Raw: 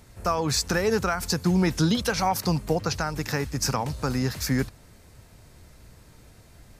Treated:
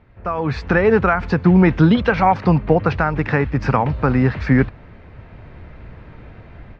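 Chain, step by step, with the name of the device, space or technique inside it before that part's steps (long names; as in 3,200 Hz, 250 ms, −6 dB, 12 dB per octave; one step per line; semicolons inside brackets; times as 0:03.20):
action camera in a waterproof case (low-pass filter 2,600 Hz 24 dB per octave; automatic gain control gain up to 12.5 dB; AAC 128 kbit/s 44,100 Hz)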